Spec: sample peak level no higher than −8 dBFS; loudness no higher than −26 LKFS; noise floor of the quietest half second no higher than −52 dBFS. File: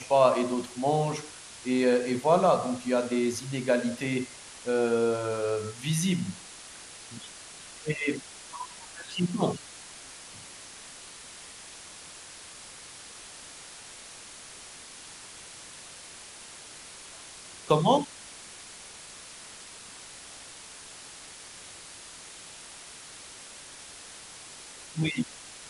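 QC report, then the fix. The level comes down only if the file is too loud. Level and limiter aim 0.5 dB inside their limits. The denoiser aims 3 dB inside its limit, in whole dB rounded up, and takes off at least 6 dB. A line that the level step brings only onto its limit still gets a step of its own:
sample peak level −7.0 dBFS: out of spec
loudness −28.0 LKFS: in spec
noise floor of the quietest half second −46 dBFS: out of spec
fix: broadband denoise 9 dB, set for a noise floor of −46 dBFS
brickwall limiter −8.5 dBFS

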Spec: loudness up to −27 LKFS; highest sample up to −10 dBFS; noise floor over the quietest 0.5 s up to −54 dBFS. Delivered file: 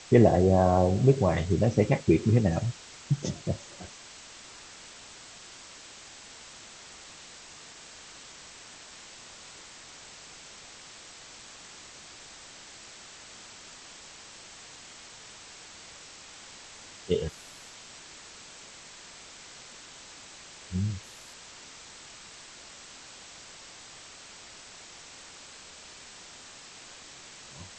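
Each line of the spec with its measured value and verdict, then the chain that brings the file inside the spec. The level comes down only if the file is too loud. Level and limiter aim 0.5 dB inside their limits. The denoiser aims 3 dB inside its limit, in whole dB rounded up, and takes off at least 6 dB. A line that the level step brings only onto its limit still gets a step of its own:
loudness −25.5 LKFS: out of spec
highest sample −6.0 dBFS: out of spec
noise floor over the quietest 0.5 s −48 dBFS: out of spec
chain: broadband denoise 7 dB, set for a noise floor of −48 dBFS
level −2 dB
brickwall limiter −10.5 dBFS

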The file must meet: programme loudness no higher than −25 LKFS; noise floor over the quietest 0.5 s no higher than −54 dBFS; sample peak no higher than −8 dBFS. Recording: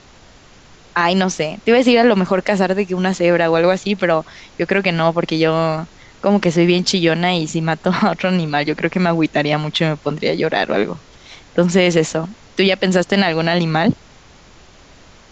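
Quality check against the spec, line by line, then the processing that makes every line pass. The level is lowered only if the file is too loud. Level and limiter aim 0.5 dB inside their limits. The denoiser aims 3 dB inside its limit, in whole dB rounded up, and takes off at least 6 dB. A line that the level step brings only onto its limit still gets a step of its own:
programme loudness −16.5 LKFS: out of spec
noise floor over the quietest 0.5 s −45 dBFS: out of spec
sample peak −3.0 dBFS: out of spec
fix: broadband denoise 6 dB, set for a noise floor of −45 dBFS
level −9 dB

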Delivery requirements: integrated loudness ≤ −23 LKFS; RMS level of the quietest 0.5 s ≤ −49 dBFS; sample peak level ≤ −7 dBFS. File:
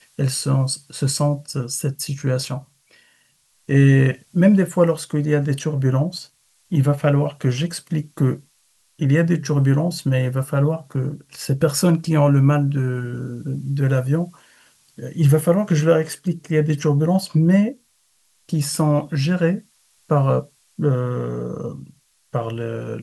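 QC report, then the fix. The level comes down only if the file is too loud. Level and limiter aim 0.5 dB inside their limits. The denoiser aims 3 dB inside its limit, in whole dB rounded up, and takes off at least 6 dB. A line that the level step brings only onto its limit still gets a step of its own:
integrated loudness −20.0 LKFS: out of spec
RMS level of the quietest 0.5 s −62 dBFS: in spec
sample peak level −4.5 dBFS: out of spec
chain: level −3.5 dB

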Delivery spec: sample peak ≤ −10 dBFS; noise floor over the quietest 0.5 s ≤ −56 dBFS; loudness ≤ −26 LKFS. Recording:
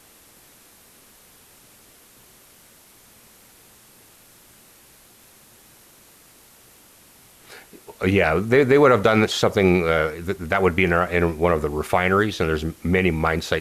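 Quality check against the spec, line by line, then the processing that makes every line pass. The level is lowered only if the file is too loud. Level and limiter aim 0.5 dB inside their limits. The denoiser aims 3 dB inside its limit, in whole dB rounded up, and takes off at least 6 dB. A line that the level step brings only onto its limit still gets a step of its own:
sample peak −5.5 dBFS: out of spec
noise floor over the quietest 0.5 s −51 dBFS: out of spec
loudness −19.5 LKFS: out of spec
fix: level −7 dB

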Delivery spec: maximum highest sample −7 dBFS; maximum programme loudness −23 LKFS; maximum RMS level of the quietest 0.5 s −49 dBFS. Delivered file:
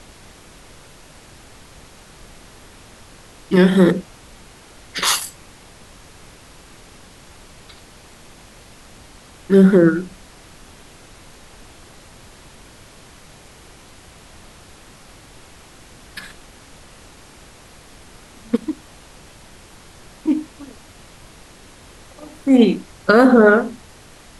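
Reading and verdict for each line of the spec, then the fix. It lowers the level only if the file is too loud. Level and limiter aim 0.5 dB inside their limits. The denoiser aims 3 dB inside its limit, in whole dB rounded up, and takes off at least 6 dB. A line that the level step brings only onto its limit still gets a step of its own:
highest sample −2.0 dBFS: out of spec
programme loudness −16.0 LKFS: out of spec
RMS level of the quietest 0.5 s −44 dBFS: out of spec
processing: level −7.5 dB

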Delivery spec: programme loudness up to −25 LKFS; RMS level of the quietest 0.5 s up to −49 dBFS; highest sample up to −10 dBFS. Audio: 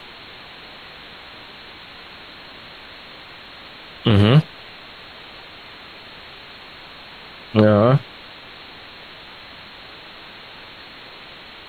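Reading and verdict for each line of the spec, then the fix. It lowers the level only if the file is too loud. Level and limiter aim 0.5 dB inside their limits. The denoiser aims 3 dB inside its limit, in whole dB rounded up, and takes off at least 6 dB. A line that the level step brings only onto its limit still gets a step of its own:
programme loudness −16.5 LKFS: out of spec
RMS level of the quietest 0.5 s −40 dBFS: out of spec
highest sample −3.0 dBFS: out of spec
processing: broadband denoise 6 dB, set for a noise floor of −40 dBFS
level −9 dB

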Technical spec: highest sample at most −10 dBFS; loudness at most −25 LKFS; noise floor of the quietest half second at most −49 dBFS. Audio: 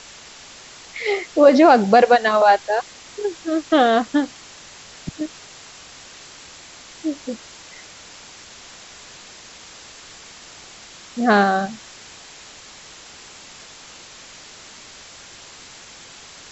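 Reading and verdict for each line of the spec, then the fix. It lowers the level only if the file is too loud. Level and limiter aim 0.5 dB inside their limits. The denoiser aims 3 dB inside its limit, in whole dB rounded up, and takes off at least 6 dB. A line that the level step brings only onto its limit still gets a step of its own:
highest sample −2.0 dBFS: out of spec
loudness −17.5 LKFS: out of spec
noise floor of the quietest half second −42 dBFS: out of spec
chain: level −8 dB
brickwall limiter −10.5 dBFS

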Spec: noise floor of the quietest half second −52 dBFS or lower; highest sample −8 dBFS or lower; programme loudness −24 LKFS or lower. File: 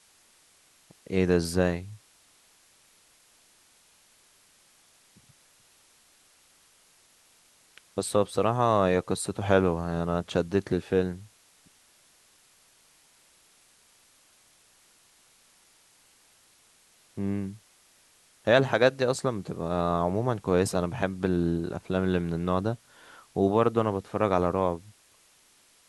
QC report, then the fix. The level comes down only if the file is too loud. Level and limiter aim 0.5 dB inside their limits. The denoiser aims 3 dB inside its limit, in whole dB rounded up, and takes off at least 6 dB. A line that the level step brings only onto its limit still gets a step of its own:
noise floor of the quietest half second −61 dBFS: in spec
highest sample −7.0 dBFS: out of spec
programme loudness −27.0 LKFS: in spec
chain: brickwall limiter −8.5 dBFS

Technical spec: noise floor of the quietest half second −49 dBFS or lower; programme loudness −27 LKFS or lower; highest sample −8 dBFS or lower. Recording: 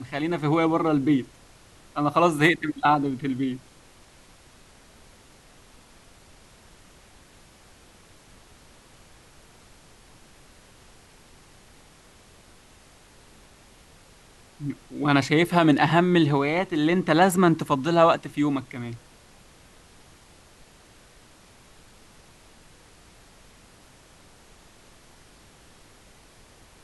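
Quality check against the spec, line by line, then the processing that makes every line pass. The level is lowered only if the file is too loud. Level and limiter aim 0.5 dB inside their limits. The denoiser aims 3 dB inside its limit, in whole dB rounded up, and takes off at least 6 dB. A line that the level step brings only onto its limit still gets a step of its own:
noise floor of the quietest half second −53 dBFS: in spec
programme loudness −22.5 LKFS: out of spec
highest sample −4.5 dBFS: out of spec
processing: level −5 dB

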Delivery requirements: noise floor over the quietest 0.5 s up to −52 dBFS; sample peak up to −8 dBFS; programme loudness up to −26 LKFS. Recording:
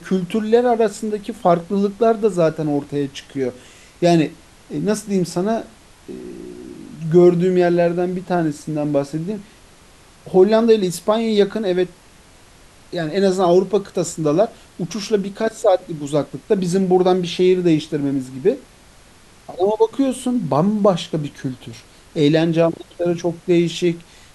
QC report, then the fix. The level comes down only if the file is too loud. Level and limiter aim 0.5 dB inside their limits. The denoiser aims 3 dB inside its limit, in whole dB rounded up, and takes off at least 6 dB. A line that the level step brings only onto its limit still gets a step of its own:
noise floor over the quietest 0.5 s −47 dBFS: out of spec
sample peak −2.0 dBFS: out of spec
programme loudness −18.5 LKFS: out of spec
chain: level −8 dB

